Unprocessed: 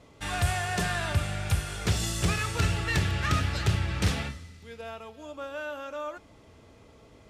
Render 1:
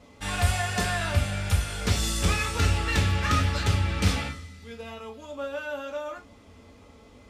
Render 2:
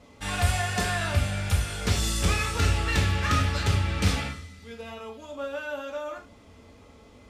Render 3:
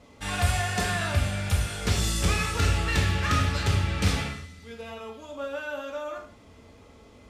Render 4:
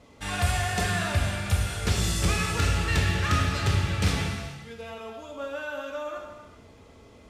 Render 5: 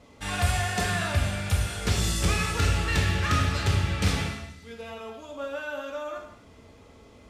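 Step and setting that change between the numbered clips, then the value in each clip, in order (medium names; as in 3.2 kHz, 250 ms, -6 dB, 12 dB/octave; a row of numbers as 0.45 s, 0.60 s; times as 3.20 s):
gated-style reverb, gate: 80 ms, 120 ms, 190 ms, 490 ms, 290 ms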